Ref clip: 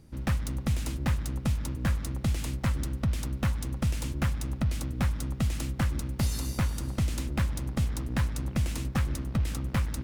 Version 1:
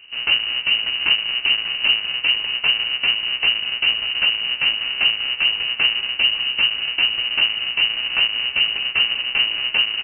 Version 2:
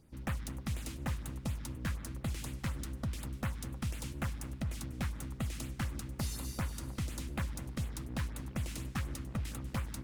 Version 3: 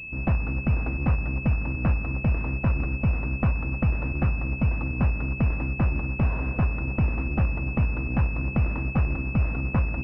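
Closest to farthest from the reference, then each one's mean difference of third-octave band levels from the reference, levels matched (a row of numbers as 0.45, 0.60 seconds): 2, 3, 1; 2.5, 10.0, 19.0 decibels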